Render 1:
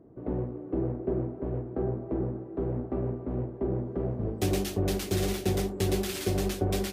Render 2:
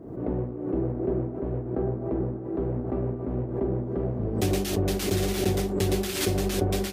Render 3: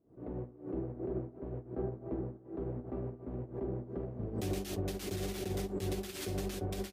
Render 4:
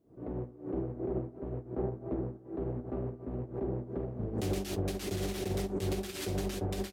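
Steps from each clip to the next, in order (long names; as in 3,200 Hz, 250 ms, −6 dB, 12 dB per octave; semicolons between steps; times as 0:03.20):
background raised ahead of every attack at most 64 dB per second; level +2 dB
brickwall limiter −19.5 dBFS, peak gain reduction 7.5 dB; expander for the loud parts 2.5 to 1, over −42 dBFS; level −5.5 dB
highs frequency-modulated by the lows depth 0.3 ms; level +3 dB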